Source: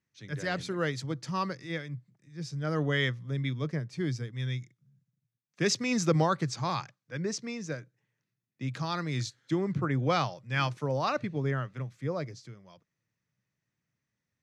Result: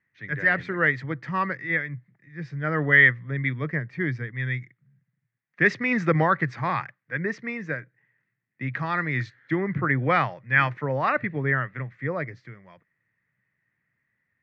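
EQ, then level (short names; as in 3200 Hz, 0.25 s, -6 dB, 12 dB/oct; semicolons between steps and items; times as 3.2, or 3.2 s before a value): synth low-pass 1900 Hz, resonance Q 5.7; +3.0 dB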